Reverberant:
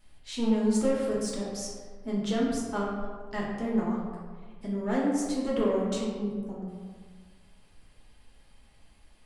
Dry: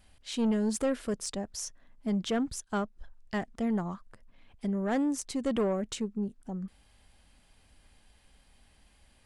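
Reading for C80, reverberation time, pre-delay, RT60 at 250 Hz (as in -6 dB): 2.5 dB, 1.6 s, 3 ms, 1.6 s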